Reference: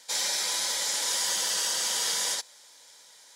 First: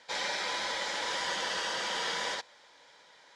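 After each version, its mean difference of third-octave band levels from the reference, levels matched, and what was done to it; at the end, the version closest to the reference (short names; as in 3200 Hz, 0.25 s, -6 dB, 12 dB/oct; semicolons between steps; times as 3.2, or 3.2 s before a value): 8.5 dB: LPF 2500 Hz 12 dB/oct; gain +3.5 dB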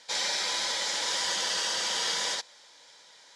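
5.0 dB: LPF 4800 Hz 12 dB/oct; gain +2.5 dB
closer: second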